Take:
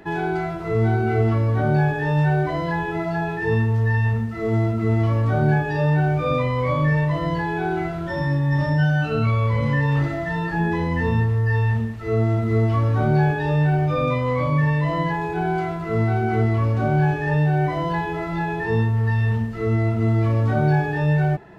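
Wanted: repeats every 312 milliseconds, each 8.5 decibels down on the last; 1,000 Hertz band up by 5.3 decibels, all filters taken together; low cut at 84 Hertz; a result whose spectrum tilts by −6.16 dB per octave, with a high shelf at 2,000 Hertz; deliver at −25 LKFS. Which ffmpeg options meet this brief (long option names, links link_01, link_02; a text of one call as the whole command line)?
ffmpeg -i in.wav -af "highpass=84,equalizer=frequency=1000:width_type=o:gain=5,highshelf=frequency=2000:gain=8,aecho=1:1:312|624|936|1248:0.376|0.143|0.0543|0.0206,volume=-6dB" out.wav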